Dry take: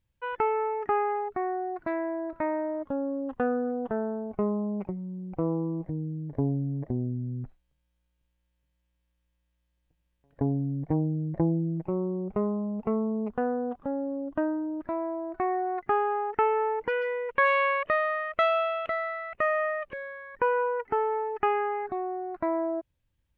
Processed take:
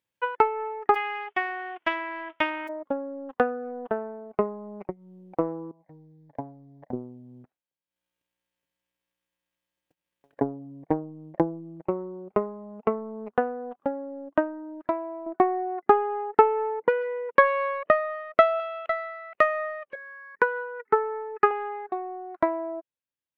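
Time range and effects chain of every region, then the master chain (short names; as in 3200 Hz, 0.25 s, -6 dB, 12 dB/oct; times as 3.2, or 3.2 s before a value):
0.94–2.67 spectral whitening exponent 0.1 + steep low-pass 3300 Hz 96 dB/oct
5.71–6.93 HPF 81 Hz 6 dB/oct + low shelf 320 Hz -2.5 dB + fixed phaser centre 1900 Hz, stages 8
15.26–18.6 HPF 150 Hz 24 dB/oct + tilt -3.5 dB/oct
19.95–21.51 bell 470 Hz +5 dB 1 oct + fixed phaser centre 1600 Hz, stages 4 + comb 4.7 ms, depth 46%
whole clip: Bessel high-pass 410 Hz, order 2; dynamic EQ 2800 Hz, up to -3 dB, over -44 dBFS, Q 0.91; transient shaper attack +11 dB, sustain -12 dB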